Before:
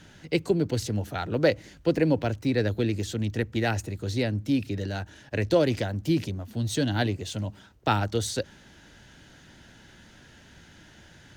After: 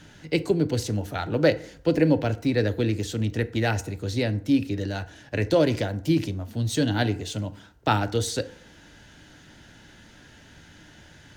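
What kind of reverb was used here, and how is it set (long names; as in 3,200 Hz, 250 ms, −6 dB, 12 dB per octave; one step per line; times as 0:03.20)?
feedback delay network reverb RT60 0.56 s, low-frequency decay 0.8×, high-frequency decay 0.55×, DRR 11 dB
level +1.5 dB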